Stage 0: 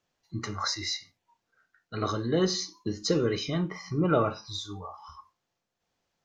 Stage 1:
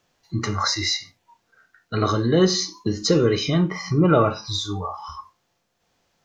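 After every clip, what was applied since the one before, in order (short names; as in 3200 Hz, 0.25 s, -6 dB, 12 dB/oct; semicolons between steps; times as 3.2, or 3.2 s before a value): harmonic-percussive split percussive -4 dB; in parallel at -1 dB: compressor, threshold -36 dBFS, peak gain reduction 14.5 dB; on the sum: gain +7.5 dB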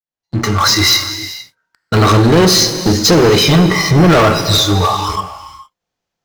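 opening faded in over 0.96 s; sample leveller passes 5; non-linear reverb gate 0.48 s flat, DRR 9.5 dB; gain -1 dB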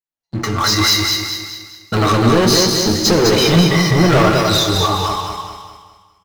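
flange 0.63 Hz, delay 1.8 ms, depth 7.7 ms, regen +59%; feedback echo 0.205 s, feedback 41%, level -4 dB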